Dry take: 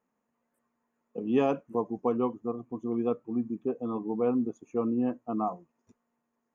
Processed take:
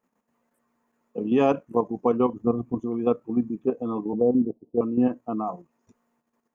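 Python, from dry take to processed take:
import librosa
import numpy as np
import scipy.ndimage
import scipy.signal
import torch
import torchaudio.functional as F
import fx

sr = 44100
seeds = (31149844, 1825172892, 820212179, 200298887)

y = fx.low_shelf(x, sr, hz=240.0, db=11.0, at=(2.33, 2.8))
y = fx.steep_lowpass(y, sr, hz=690.0, slope=36, at=(4.13, 4.81))
y = fx.level_steps(y, sr, step_db=9)
y = y * 10.0 ** (8.5 / 20.0)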